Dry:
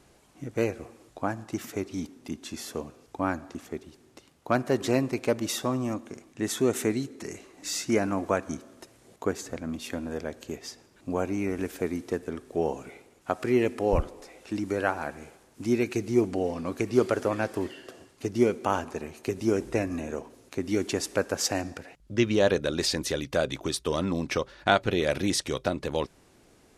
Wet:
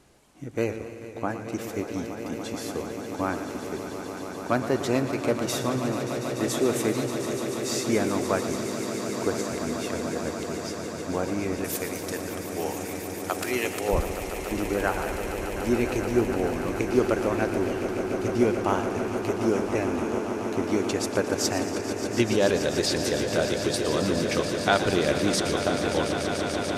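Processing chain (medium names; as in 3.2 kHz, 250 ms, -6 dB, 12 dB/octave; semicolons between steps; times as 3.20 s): 11.64–13.89 s: tilt EQ +4.5 dB/octave; echo with a slow build-up 145 ms, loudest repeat 8, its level -12.5 dB; modulated delay 116 ms, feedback 63%, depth 90 cents, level -12 dB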